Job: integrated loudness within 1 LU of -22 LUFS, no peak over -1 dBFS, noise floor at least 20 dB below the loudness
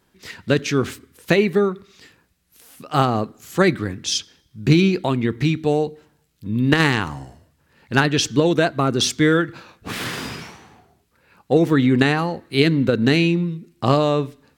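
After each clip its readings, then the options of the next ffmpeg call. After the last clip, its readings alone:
loudness -19.5 LUFS; peak -2.0 dBFS; loudness target -22.0 LUFS
-> -af "volume=-2.5dB"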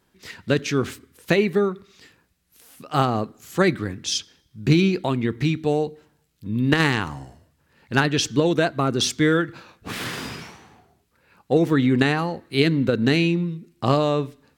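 loudness -22.0 LUFS; peak -4.5 dBFS; noise floor -67 dBFS

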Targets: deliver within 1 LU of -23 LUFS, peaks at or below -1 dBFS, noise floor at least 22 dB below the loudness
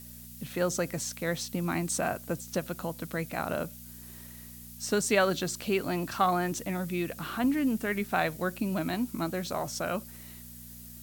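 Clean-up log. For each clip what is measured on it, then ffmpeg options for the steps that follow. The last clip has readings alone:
hum 60 Hz; harmonics up to 240 Hz; hum level -49 dBFS; noise floor -47 dBFS; noise floor target -53 dBFS; loudness -31.0 LUFS; peak -11.5 dBFS; loudness target -23.0 LUFS
-> -af "bandreject=f=60:t=h:w=4,bandreject=f=120:t=h:w=4,bandreject=f=180:t=h:w=4,bandreject=f=240:t=h:w=4"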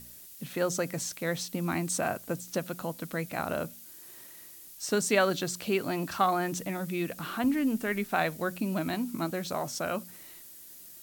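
hum none; noise floor -49 dBFS; noise floor target -53 dBFS
-> -af "afftdn=nr=6:nf=-49"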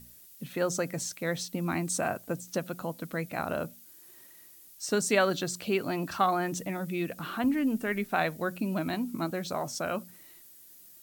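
noise floor -54 dBFS; loudness -31.0 LUFS; peak -11.5 dBFS; loudness target -23.0 LUFS
-> -af "volume=8dB"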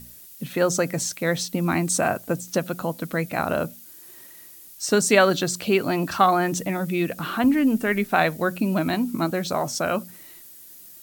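loudness -23.0 LUFS; peak -3.5 dBFS; noise floor -46 dBFS

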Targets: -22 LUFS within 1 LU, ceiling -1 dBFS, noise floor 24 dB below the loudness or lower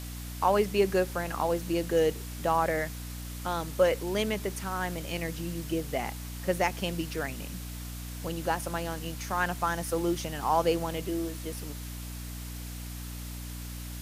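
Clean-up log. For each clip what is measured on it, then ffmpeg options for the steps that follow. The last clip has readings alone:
hum 60 Hz; harmonics up to 300 Hz; hum level -37 dBFS; noise floor -39 dBFS; noise floor target -55 dBFS; loudness -31.0 LUFS; peak -12.0 dBFS; loudness target -22.0 LUFS
-> -af "bandreject=f=60:t=h:w=6,bandreject=f=120:t=h:w=6,bandreject=f=180:t=h:w=6,bandreject=f=240:t=h:w=6,bandreject=f=300:t=h:w=6"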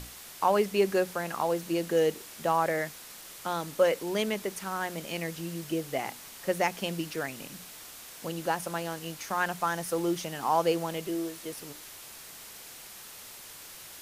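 hum none; noise floor -47 dBFS; noise floor target -55 dBFS
-> -af "afftdn=nr=8:nf=-47"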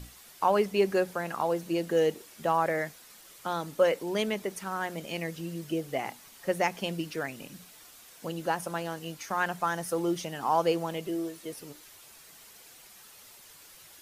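noise floor -53 dBFS; noise floor target -55 dBFS
-> -af "afftdn=nr=6:nf=-53"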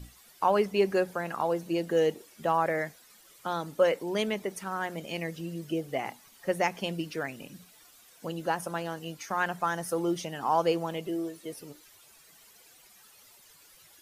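noise floor -57 dBFS; loudness -30.5 LUFS; peak -13.0 dBFS; loudness target -22.0 LUFS
-> -af "volume=8.5dB"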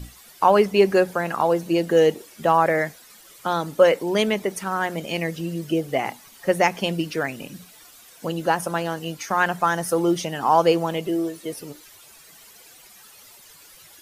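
loudness -22.0 LUFS; peak -4.5 dBFS; noise floor -49 dBFS

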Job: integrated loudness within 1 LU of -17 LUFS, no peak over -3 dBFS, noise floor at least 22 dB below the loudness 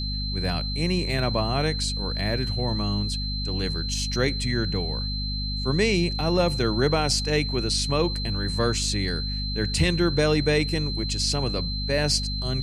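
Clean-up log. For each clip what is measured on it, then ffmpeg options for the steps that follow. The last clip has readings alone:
hum 50 Hz; harmonics up to 250 Hz; hum level -27 dBFS; steady tone 4100 Hz; tone level -31 dBFS; loudness -24.5 LUFS; peak -9.0 dBFS; loudness target -17.0 LUFS
-> -af "bandreject=f=50:t=h:w=6,bandreject=f=100:t=h:w=6,bandreject=f=150:t=h:w=6,bandreject=f=200:t=h:w=6,bandreject=f=250:t=h:w=6"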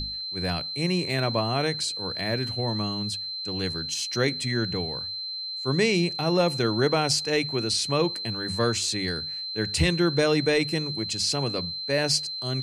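hum none; steady tone 4100 Hz; tone level -31 dBFS
-> -af "bandreject=f=4.1k:w=30"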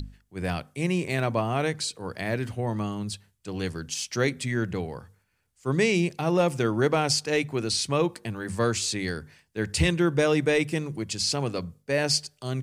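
steady tone none; loudness -27.0 LUFS; peak -10.5 dBFS; loudness target -17.0 LUFS
-> -af "volume=10dB,alimiter=limit=-3dB:level=0:latency=1"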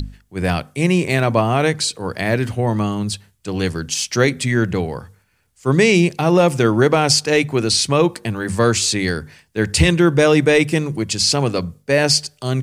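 loudness -17.5 LUFS; peak -3.0 dBFS; noise floor -60 dBFS

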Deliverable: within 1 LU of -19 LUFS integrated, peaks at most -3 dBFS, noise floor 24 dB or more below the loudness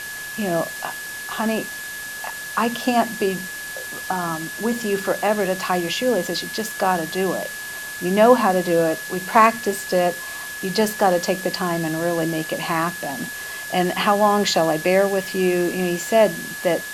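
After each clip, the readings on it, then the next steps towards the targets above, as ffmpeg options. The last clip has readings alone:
steady tone 1700 Hz; tone level -31 dBFS; noise floor -32 dBFS; noise floor target -46 dBFS; loudness -21.5 LUFS; peak -2.0 dBFS; loudness target -19.0 LUFS
-> -af "bandreject=f=1.7k:w=30"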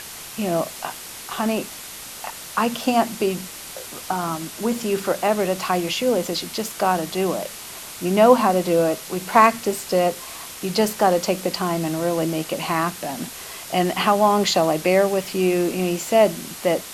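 steady tone none; noise floor -37 dBFS; noise floor target -46 dBFS
-> -af "afftdn=nr=9:nf=-37"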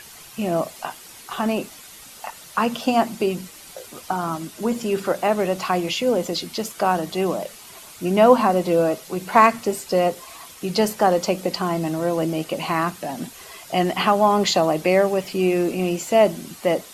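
noise floor -43 dBFS; noise floor target -46 dBFS
-> -af "afftdn=nr=6:nf=-43"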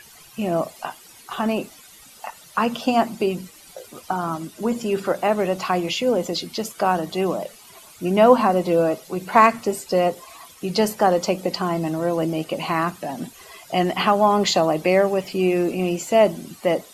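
noise floor -47 dBFS; loudness -21.5 LUFS; peak -2.0 dBFS; loudness target -19.0 LUFS
-> -af "volume=2.5dB,alimiter=limit=-3dB:level=0:latency=1"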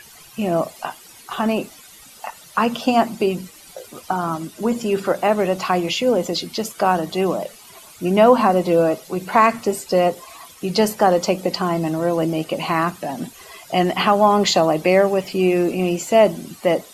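loudness -19.5 LUFS; peak -3.0 dBFS; noise floor -45 dBFS

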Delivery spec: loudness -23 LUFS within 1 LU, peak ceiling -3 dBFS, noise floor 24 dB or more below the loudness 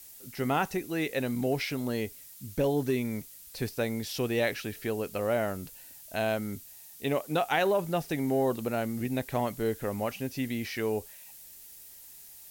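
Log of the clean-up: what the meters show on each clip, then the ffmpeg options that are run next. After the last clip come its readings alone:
noise floor -50 dBFS; noise floor target -55 dBFS; loudness -31.0 LUFS; peak -13.0 dBFS; loudness target -23.0 LUFS
-> -af "afftdn=nr=6:nf=-50"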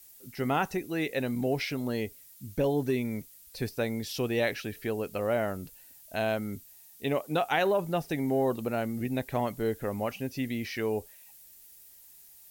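noise floor -54 dBFS; noise floor target -55 dBFS
-> -af "afftdn=nr=6:nf=-54"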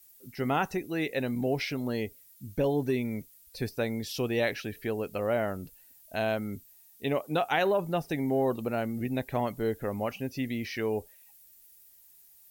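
noise floor -57 dBFS; loudness -31.0 LUFS; peak -13.0 dBFS; loudness target -23.0 LUFS
-> -af "volume=8dB"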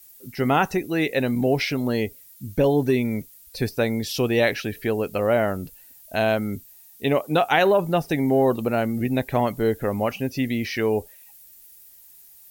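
loudness -23.0 LUFS; peak -5.0 dBFS; noise floor -49 dBFS

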